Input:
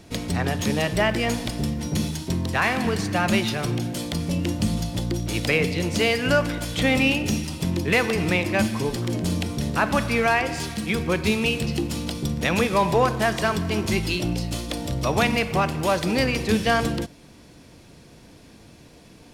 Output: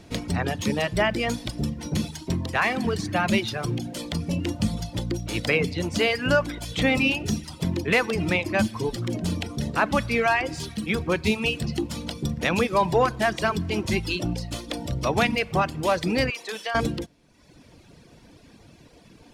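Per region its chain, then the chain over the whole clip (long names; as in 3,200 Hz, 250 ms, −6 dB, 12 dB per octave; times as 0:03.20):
0:16.30–0:16.75: high-pass filter 580 Hz + downward compressor 5 to 1, threshold −25 dBFS
whole clip: reverb reduction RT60 1 s; high-shelf EQ 8,700 Hz −7.5 dB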